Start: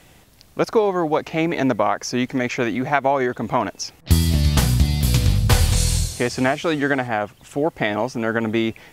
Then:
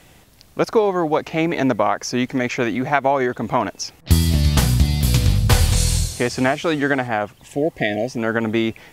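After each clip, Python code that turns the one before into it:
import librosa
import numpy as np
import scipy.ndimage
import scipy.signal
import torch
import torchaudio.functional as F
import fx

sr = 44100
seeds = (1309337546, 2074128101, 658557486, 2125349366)

y = fx.spec_repair(x, sr, seeds[0], start_s=7.45, length_s=0.71, low_hz=760.0, high_hz=1600.0, source='before')
y = y * librosa.db_to_amplitude(1.0)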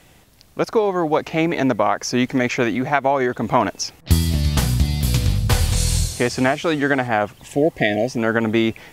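y = fx.rider(x, sr, range_db=4, speed_s=0.5)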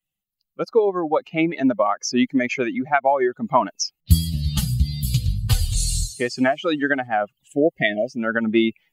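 y = fx.bin_expand(x, sr, power=2.0)
y = y * librosa.db_to_amplitude(3.0)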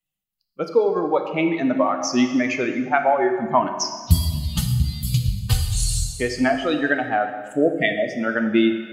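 y = fx.rev_plate(x, sr, seeds[1], rt60_s=1.6, hf_ratio=0.8, predelay_ms=0, drr_db=5.0)
y = y * librosa.db_to_amplitude(-1.0)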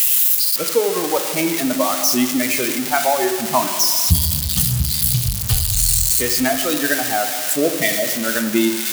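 y = x + 0.5 * 10.0 ** (-9.5 / 20.0) * np.diff(np.sign(x), prepend=np.sign(x[:1]))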